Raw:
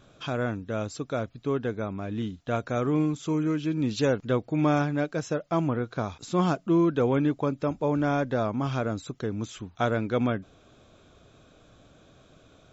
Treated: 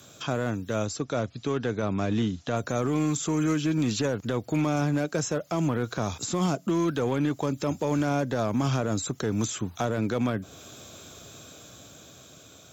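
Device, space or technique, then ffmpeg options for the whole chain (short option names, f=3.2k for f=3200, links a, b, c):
FM broadcast chain: -filter_complex "[0:a]highpass=f=71:w=0.5412,highpass=f=71:w=1.3066,dynaudnorm=f=330:g=9:m=5.5dB,acrossover=split=99|830|1900[a][b][c][d];[a]acompressor=threshold=-41dB:ratio=4[e];[b]acompressor=threshold=-25dB:ratio=4[f];[c]acompressor=threshold=-38dB:ratio=4[g];[d]acompressor=threshold=-51dB:ratio=4[h];[e][f][g][h]amix=inputs=4:normalize=0,aemphasis=mode=production:type=50fm,alimiter=limit=-20.5dB:level=0:latency=1:release=15,asoftclip=type=hard:threshold=-22dB,lowpass=f=15k:w=0.5412,lowpass=f=15k:w=1.3066,aemphasis=mode=production:type=50fm,asettb=1/sr,asplit=3[i][j][k];[i]atrim=end=0.854[l];[j]atrim=start=0.85:end=2.57,asetpts=PTS-STARTPTS,afade=t=in:d=0.004:c=qsin,afade=t=out:st=1.716:d=0.004:c=qsin,lowpass=f=6.7k:w=0.5412,lowpass=f=6.7k:w=1.3066[m];[k]atrim=start=2.566[n];[l][m]acrossfade=d=0.004:c1=hsin:c2=qsin[o];[o][n]acrossfade=d=0.004:c1=qsin:c2=hsin,volume=3.5dB"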